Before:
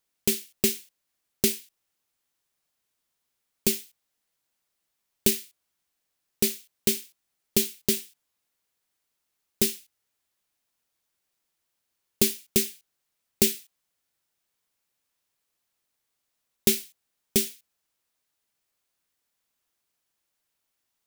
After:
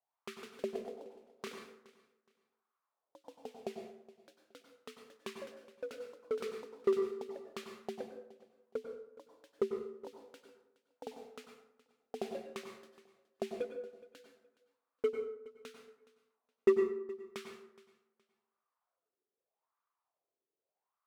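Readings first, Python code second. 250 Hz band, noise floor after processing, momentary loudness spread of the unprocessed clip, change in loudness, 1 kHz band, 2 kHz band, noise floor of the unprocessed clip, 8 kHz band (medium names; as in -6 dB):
-11.0 dB, under -85 dBFS, 8 LU, -14.0 dB, +4.5 dB, -11.5 dB, -80 dBFS, -31.0 dB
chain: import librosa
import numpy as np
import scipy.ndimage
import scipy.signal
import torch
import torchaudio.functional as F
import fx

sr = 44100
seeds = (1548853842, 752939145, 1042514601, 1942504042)

p1 = fx.wah_lfo(x, sr, hz=0.82, low_hz=370.0, high_hz=1200.0, q=7.6)
p2 = fx.high_shelf(p1, sr, hz=4700.0, db=-6.0)
p3 = 10.0 ** (-33.0 / 20.0) * (np.abs((p2 / 10.0 ** (-33.0 / 20.0) + 3.0) % 4.0 - 2.0) - 1.0)
p4 = p2 + F.gain(torch.from_numpy(p3), -5.5).numpy()
p5 = fx.echo_pitch(p4, sr, ms=186, semitones=2, count=3, db_per_echo=-6.0)
p6 = p5 + fx.echo_feedback(p5, sr, ms=419, feedback_pct=25, wet_db=-20.0, dry=0)
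p7 = fx.rev_plate(p6, sr, seeds[0], rt60_s=0.73, hf_ratio=0.55, predelay_ms=85, drr_db=4.0)
y = F.gain(torch.from_numpy(p7), 4.0).numpy()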